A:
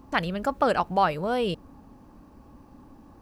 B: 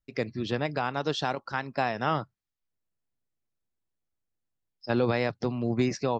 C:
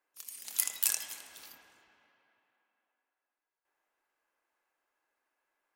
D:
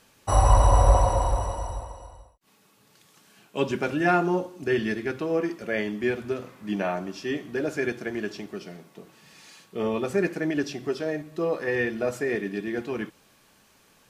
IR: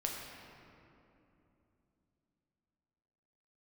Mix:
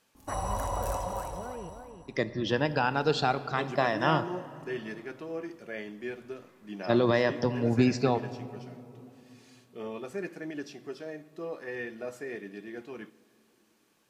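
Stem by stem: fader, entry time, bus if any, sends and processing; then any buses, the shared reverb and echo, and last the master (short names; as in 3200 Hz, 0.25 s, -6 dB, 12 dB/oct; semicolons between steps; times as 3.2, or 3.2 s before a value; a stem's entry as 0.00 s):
-8.0 dB, 0.15 s, no send, echo send -7.5 dB, steep low-pass 2300 Hz; compressor, threshold -31 dBFS, peak gain reduction 14 dB
-1.0 dB, 2.00 s, send -11 dB, no echo send, moving spectral ripple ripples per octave 1.2, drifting -0.62 Hz, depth 9 dB; notch 2200 Hz
-9.0 dB, 0.00 s, no send, echo send -6.5 dB, harmonic-percussive split percussive -12 dB
-11.5 dB, 0.00 s, send -19.5 dB, no echo send, low shelf 90 Hz -11.5 dB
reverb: on, RT60 3.0 s, pre-delay 7 ms
echo: echo 0.33 s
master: dry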